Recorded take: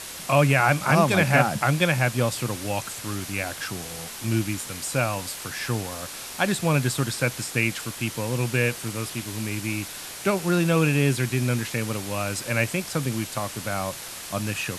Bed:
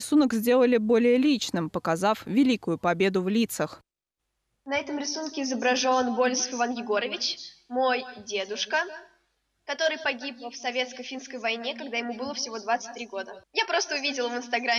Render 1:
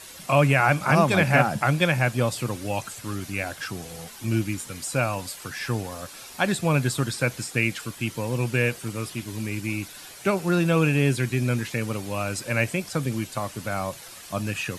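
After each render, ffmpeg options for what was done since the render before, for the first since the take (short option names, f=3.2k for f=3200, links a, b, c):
-af "afftdn=nr=9:nf=-38"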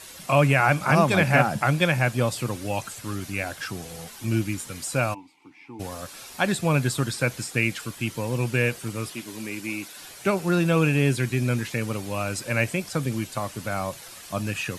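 -filter_complex "[0:a]asplit=3[a][b][c];[a]afade=t=out:st=5.13:d=0.02[d];[b]asplit=3[e][f][g];[e]bandpass=f=300:t=q:w=8,volume=0dB[h];[f]bandpass=f=870:t=q:w=8,volume=-6dB[i];[g]bandpass=f=2.24k:t=q:w=8,volume=-9dB[j];[h][i][j]amix=inputs=3:normalize=0,afade=t=in:st=5.13:d=0.02,afade=t=out:st=5.79:d=0.02[k];[c]afade=t=in:st=5.79:d=0.02[l];[d][k][l]amix=inputs=3:normalize=0,asettb=1/sr,asplit=3[m][n][o];[m]atrim=end=9.104[p];[n]atrim=start=9.1:end=9.99,asetpts=PTS-STARTPTS,afade=t=in:d=0.004:c=qsin,afade=t=out:st=0.886:d=0.004:c=qsin,highpass=230[q];[o]atrim=start=9.986[r];[p][q]acrossfade=d=0.004:c1=hsin:c2=qsin[s];[s][r]acrossfade=d=0.004:c1=qsin:c2=hsin"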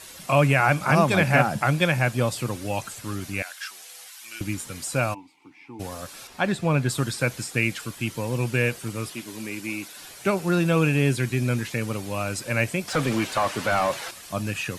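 -filter_complex "[0:a]asettb=1/sr,asplit=3[a][b][c];[a]atrim=end=3.424[d];[b]atrim=start=3.42:end=4.41,asetpts=PTS-STARTPTS,afade=t=in:d=0.004:c=qsin,afade=t=out:st=0.986:d=0.004:c=qsin,highpass=1.5k[e];[c]atrim=start=4.406[f];[d][e]acrossfade=d=0.004:c1=hsin:c2=qsin[g];[g][f]acrossfade=d=0.004:c1=qsin:c2=hsin,asettb=1/sr,asplit=3[h][i][j];[h]atrim=end=6.274[k];[i]atrim=start=6.27:end=6.89,asetpts=PTS-STARTPTS,afade=t=in:d=0.004:c=qsin,afade=t=out:st=0.616:d=0.004:c=qsin,lowpass=f=3k:p=1[l];[j]atrim=start=6.886[m];[k][l]acrossfade=d=0.004:c1=hsin:c2=qsin[n];[n][m]acrossfade=d=0.004:c1=qsin:c2=hsin,asettb=1/sr,asplit=3[o][p][q];[o]atrim=end=12.884[r];[p]atrim=start=12.88:end=14.11,asetpts=PTS-STARTPTS,afade=t=in:d=0.004:c=qsin,afade=t=out:st=1.226:d=0.004:c=qsin,asplit=2[s][t];[t]highpass=f=720:p=1,volume=22dB,asoftclip=type=tanh:threshold=-12dB[u];[s][u]amix=inputs=2:normalize=0,lowpass=f=2k:p=1,volume=-6dB[v];[q]atrim=start=14.106[w];[r][v]acrossfade=d=0.004:c1=hsin:c2=qsin[x];[x][w]acrossfade=d=0.004:c1=qsin:c2=hsin"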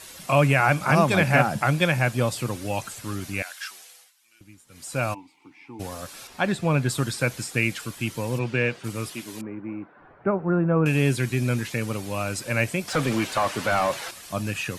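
-filter_complex "[0:a]asplit=3[a][b][c];[a]afade=t=out:st=8.38:d=0.02[d];[b]highpass=120,lowpass=4.1k,afade=t=in:st=8.38:d=0.02,afade=t=out:st=8.83:d=0.02[e];[c]afade=t=in:st=8.83:d=0.02[f];[d][e][f]amix=inputs=3:normalize=0,asettb=1/sr,asplit=3[g][h][i];[g]atrim=end=9.414[j];[h]atrim=start=9.41:end=10.86,asetpts=PTS-STARTPTS,afade=t=in:d=0.004:c=qsin,afade=t=out:st=1.446:d=0.004:c=qsin,lowpass=f=1.4k:w=0.5412,lowpass=f=1.4k:w=1.3066[k];[i]atrim=start=10.856[l];[j][k]acrossfade=d=0.004:c1=hsin:c2=qsin[m];[m][l]acrossfade=d=0.004:c1=qsin:c2=hsin,asplit=3[n][o][p];[n]atrim=end=4.13,asetpts=PTS-STARTPTS,afade=t=out:st=3.69:d=0.44:silence=0.0944061[q];[o]atrim=start=4.13:end=4.67,asetpts=PTS-STARTPTS,volume=-20.5dB[r];[p]atrim=start=4.67,asetpts=PTS-STARTPTS,afade=t=in:d=0.44:silence=0.0944061[s];[q][r][s]concat=n=3:v=0:a=1"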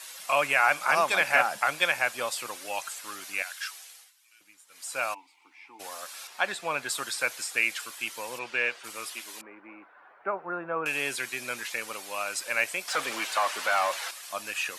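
-af "highpass=800"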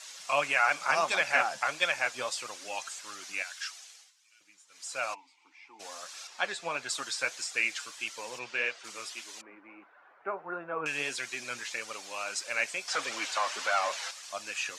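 -af "lowpass=f=6.5k:t=q:w=1.8,flanger=delay=1.4:depth=6.3:regen=54:speed=1.6:shape=sinusoidal"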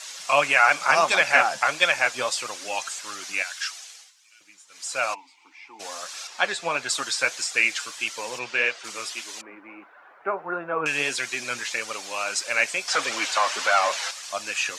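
-af "volume=8dB,alimiter=limit=-3dB:level=0:latency=1"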